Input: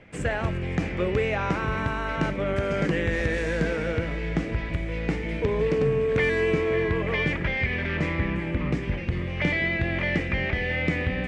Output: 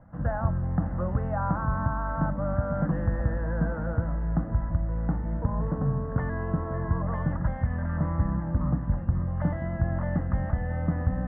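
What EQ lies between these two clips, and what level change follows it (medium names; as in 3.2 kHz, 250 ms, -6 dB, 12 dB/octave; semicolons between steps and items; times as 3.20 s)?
low-pass 1.5 kHz 24 dB/octave; bass shelf 500 Hz +3.5 dB; static phaser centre 970 Hz, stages 4; 0.0 dB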